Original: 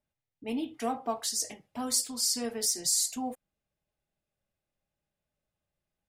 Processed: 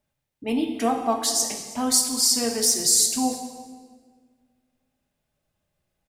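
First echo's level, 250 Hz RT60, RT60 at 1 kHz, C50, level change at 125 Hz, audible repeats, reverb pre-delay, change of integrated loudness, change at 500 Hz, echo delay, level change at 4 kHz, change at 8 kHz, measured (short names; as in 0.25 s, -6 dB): -20.5 dB, 2.0 s, 1.5 s, 6.5 dB, +9.5 dB, 1, 24 ms, +9.0 dB, +9.0 dB, 0.322 s, +9.0 dB, +9.0 dB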